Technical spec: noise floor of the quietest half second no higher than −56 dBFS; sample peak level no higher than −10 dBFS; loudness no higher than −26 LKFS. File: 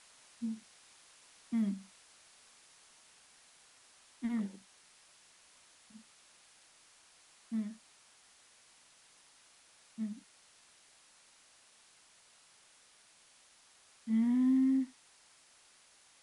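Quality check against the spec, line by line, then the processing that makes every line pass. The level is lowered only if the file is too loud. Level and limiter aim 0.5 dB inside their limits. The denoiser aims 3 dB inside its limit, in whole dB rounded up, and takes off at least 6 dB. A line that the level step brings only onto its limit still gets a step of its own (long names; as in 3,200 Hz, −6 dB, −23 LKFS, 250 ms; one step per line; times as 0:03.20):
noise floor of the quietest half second −64 dBFS: in spec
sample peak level −23.0 dBFS: in spec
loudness −35.0 LKFS: in spec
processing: no processing needed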